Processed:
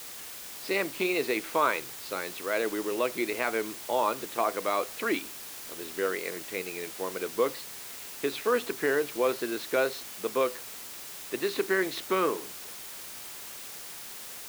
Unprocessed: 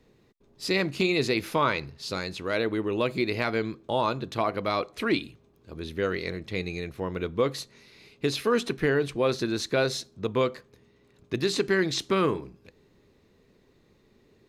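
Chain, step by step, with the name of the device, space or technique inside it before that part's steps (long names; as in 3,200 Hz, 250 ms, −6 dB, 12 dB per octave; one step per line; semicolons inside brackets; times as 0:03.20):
wax cylinder (band-pass filter 340–2,700 Hz; tape wow and flutter; white noise bed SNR 11 dB)
low-shelf EQ 130 Hz −6 dB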